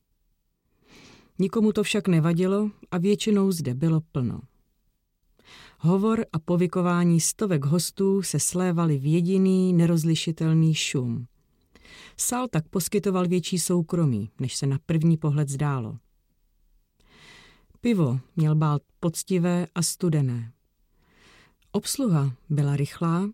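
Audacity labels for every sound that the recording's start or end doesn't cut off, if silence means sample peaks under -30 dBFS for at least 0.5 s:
1.400000	4.400000	sound
5.840000	11.220000	sound
12.190000	15.950000	sound
17.850000	20.430000	sound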